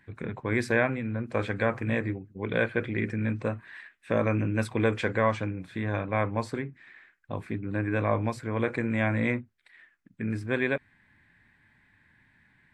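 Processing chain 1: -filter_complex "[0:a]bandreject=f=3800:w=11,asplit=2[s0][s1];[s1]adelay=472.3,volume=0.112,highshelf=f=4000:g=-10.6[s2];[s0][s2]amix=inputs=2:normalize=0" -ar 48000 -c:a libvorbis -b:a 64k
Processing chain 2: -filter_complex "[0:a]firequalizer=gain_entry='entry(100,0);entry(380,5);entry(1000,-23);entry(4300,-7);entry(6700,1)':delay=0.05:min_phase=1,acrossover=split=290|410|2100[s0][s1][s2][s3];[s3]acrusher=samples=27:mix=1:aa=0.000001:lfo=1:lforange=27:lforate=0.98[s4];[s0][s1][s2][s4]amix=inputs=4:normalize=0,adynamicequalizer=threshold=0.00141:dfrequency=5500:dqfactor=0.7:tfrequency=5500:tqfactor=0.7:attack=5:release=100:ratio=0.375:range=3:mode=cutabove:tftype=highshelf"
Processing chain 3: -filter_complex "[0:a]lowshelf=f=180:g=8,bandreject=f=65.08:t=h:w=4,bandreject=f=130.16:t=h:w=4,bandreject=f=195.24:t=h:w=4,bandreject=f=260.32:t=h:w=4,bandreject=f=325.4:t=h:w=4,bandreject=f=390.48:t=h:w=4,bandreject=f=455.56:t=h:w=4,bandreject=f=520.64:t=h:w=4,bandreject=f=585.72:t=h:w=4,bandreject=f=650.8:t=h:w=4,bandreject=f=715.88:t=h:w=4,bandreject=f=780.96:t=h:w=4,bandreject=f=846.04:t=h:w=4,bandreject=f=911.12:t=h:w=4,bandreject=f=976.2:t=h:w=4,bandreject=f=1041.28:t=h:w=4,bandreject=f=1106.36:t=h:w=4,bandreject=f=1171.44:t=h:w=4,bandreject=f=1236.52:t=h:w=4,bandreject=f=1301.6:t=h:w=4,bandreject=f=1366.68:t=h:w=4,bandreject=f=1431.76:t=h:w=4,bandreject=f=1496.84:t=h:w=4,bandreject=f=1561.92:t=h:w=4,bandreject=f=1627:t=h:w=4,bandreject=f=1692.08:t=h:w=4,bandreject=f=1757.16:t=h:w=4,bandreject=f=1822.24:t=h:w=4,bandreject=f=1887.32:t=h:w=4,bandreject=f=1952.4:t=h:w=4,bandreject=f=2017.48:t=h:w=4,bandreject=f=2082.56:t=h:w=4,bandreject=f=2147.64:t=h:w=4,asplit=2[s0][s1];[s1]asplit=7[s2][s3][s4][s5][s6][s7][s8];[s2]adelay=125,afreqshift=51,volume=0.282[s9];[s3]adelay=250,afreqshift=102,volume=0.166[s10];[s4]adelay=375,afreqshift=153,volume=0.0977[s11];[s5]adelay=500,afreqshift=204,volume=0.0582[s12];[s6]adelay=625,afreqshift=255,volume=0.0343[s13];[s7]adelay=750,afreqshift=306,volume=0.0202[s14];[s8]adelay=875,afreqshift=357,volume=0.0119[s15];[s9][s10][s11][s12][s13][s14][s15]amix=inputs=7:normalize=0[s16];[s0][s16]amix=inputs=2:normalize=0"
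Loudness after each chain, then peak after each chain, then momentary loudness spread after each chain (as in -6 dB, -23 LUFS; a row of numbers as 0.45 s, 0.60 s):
-29.5 LUFS, -29.5 LUFS, -26.5 LUFS; -10.0 dBFS, -11.5 dBFS, -9.5 dBFS; 14 LU, 8 LU, 13 LU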